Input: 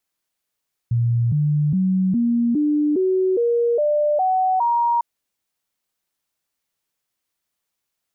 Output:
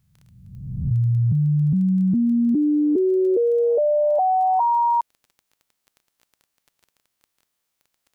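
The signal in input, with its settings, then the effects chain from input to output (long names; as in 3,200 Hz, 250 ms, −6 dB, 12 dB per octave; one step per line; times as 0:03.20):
stepped sweep 118 Hz up, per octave 3, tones 10, 0.41 s, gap 0.00 s −15.5 dBFS
peak hold with a rise ahead of every peak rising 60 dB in 1.17 s
surface crackle 14 per second −38 dBFS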